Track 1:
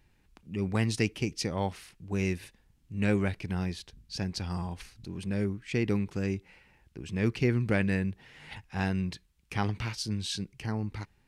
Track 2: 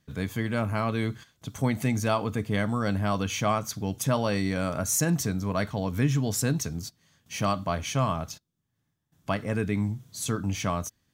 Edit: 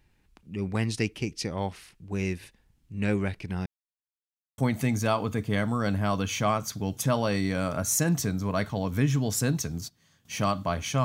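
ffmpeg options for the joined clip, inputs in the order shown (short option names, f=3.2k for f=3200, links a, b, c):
-filter_complex "[0:a]apad=whole_dur=11.04,atrim=end=11.04,asplit=2[a][b];[a]atrim=end=3.66,asetpts=PTS-STARTPTS,afade=t=out:st=3.656:d=0.004:c=hsin[c];[b]atrim=start=3.66:end=4.58,asetpts=PTS-STARTPTS,volume=0[d];[1:a]atrim=start=1.59:end=8.05,asetpts=PTS-STARTPTS,afade=t=in:d=0.004:c=hsin[e];[c][d][e]concat=n=3:v=0:a=1"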